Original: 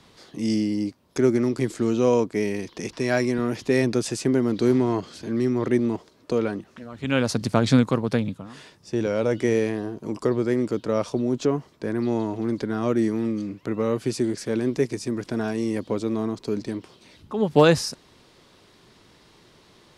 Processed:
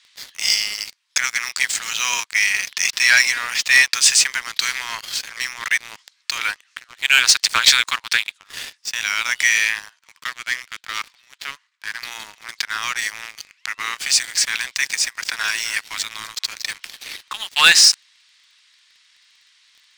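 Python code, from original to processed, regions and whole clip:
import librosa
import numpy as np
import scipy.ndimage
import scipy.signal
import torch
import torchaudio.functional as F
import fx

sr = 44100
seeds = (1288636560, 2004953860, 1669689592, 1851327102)

y = fx.chain(x, sr, fx.median_filter(points=15),
    fx.highpass(hz=1100.0, slope=12),
    fx.high_shelf(hz=6400.0, db=-7.0), at=(9.99, 12.03))
y = fx.chain(y, sr, fx.echo_feedback(ms=250, feedback_pct=48, wet_db=-15.0),
    fx.band_squash(depth_pct=40), at=(14.54, 17.55))
y = scipy.signal.sosfilt(scipy.signal.butter(6, 1000.0, 'highpass', fs=sr, output='sos'), y)
y = fx.band_shelf(y, sr, hz=3900.0, db=14.5, octaves=2.8)
y = fx.leveller(y, sr, passes=3)
y = y * 10.0 ** (-5.0 / 20.0)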